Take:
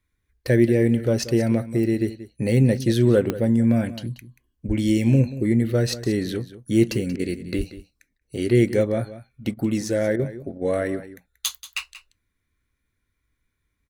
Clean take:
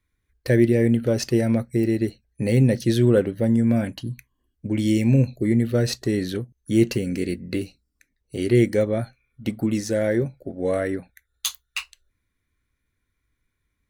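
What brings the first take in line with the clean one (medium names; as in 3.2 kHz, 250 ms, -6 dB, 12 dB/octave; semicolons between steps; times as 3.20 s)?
de-click; 4.67–4.79 s: high-pass 140 Hz 24 dB/octave; 7.57–7.69 s: high-pass 140 Hz 24 dB/octave; interpolate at 7.16/8.18/9.54/10.16/10.58 s, 32 ms; inverse comb 183 ms -15 dB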